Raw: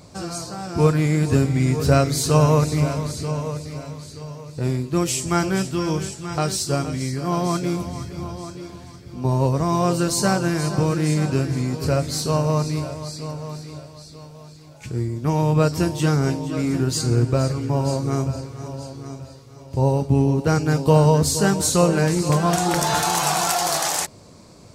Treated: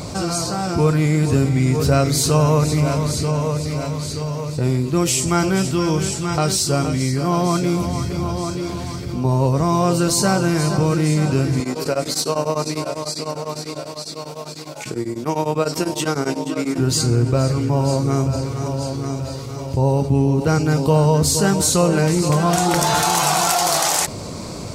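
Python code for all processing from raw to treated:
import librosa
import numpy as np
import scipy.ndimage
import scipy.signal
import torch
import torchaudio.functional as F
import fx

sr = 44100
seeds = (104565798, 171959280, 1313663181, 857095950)

y = fx.chain(x, sr, fx.highpass(hz=280.0, slope=12),
    fx.tremolo_abs(hz=10.0), at=(11.6, 16.78))
y = fx.notch(y, sr, hz=1700.0, q=16.0)
y = fx.env_flatten(y, sr, amount_pct=50)
y = y * 10.0 ** (-1.0 / 20.0)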